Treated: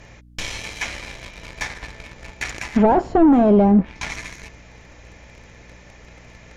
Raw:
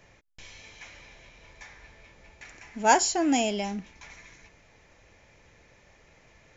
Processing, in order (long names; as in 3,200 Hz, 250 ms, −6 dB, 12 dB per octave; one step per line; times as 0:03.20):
mains hum 60 Hz, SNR 27 dB
leveller curve on the samples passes 2
in parallel at −12 dB: sine wavefolder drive 14 dB, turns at −7 dBFS
on the sum: treble cut that deepens with the level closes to 610 Hz, closed at −14.5 dBFS
level +5.5 dB